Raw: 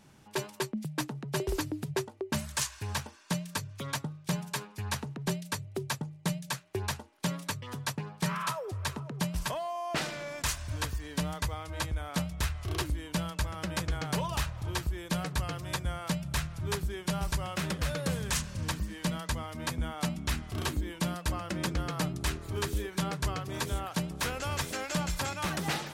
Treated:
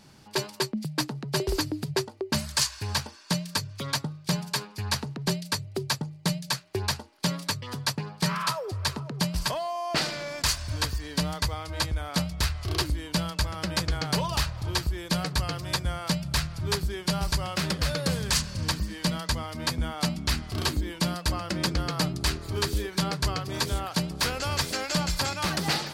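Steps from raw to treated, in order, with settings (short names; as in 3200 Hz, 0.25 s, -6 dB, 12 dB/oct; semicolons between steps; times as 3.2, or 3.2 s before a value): bell 4600 Hz +10 dB 0.38 oct; gain +4 dB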